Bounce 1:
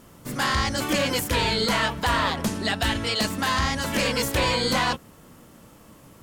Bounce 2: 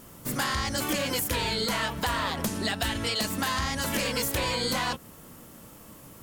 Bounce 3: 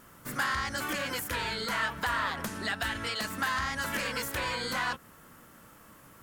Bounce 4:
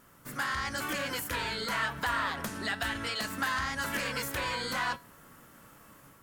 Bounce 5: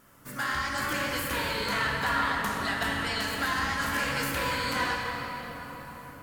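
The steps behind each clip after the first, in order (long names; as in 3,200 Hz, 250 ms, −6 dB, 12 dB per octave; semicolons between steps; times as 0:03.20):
high-shelf EQ 9,600 Hz +11 dB; downward compressor, threshold −25 dBFS, peak gain reduction 7 dB
parametric band 1,500 Hz +11 dB 1.2 octaves; level −8 dB
automatic gain control gain up to 4 dB; tuned comb filter 140 Hz, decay 0.3 s, harmonics all, mix 50%
convolution reverb RT60 4.9 s, pre-delay 10 ms, DRR −2 dB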